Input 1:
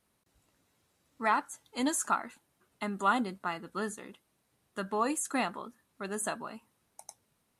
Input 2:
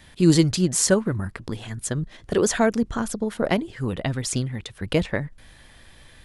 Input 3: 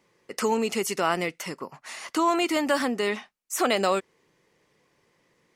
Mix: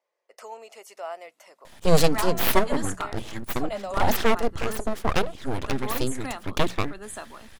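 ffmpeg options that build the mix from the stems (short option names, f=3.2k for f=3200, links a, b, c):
-filter_complex "[0:a]highpass=f=200:w=0.5412,highpass=f=200:w=1.3066,adelay=900,volume=-3.5dB[a];[1:a]aeval=exprs='abs(val(0))':c=same,adelay=1650,volume=1.5dB[b];[2:a]highpass=f=630:t=q:w=4.9,volume=-18dB[c];[a][b][c]amix=inputs=3:normalize=0,bandreject=f=60:t=h:w=6,bandreject=f=120:t=h:w=6,bandreject=f=180:t=h:w=6"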